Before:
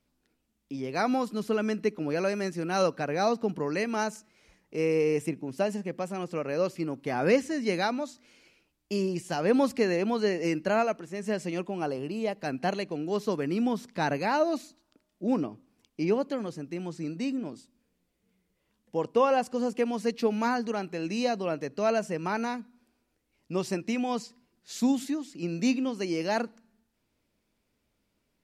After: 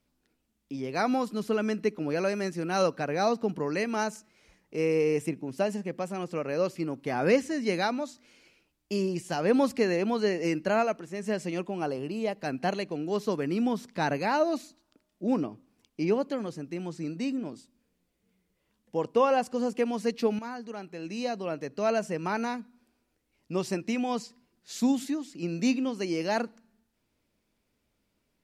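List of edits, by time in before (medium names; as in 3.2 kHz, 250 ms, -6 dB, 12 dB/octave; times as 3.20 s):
20.39–22.05 s: fade in, from -12.5 dB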